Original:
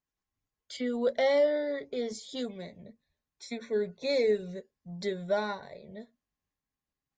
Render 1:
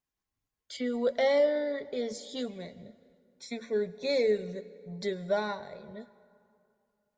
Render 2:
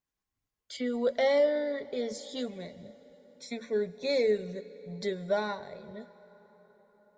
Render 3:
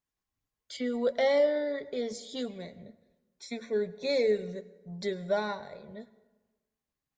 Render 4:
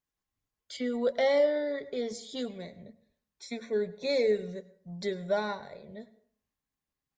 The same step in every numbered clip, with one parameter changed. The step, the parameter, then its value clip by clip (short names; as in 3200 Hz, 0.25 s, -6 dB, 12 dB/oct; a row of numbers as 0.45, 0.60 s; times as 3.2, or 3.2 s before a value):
plate-style reverb, RT60: 2.5, 5.3, 1.2, 0.56 s